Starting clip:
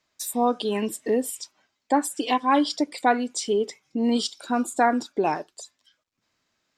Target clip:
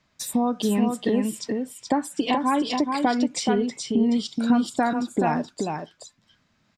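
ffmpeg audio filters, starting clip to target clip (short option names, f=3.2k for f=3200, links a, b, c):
-filter_complex "[0:a]lowpass=f=3.3k:p=1,lowshelf=f=260:t=q:w=1.5:g=7.5,acompressor=threshold=-27dB:ratio=5,asplit=2[a][b];[b]aecho=0:1:426:0.596[c];[a][c]amix=inputs=2:normalize=0,volume=7dB"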